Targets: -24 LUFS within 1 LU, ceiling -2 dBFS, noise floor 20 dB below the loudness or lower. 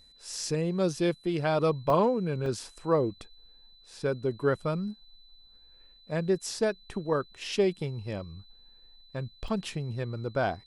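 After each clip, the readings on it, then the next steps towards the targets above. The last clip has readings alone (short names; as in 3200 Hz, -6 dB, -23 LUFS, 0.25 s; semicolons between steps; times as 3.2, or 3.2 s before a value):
dropouts 3; longest dropout 1.1 ms; steady tone 4000 Hz; tone level -56 dBFS; loudness -30.0 LUFS; peak -12.5 dBFS; loudness target -24.0 LUFS
-> interpolate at 1.9/2.46/9.48, 1.1 ms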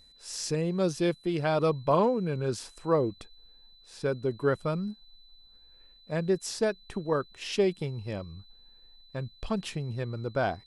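dropouts 0; steady tone 4000 Hz; tone level -56 dBFS
-> notch 4000 Hz, Q 30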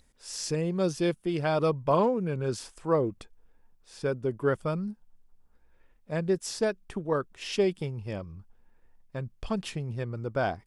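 steady tone none; loudness -30.0 LUFS; peak -12.5 dBFS; loudness target -24.0 LUFS
-> gain +6 dB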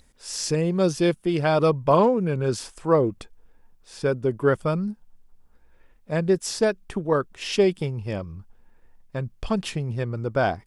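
loudness -24.0 LUFS; peak -6.5 dBFS; noise floor -57 dBFS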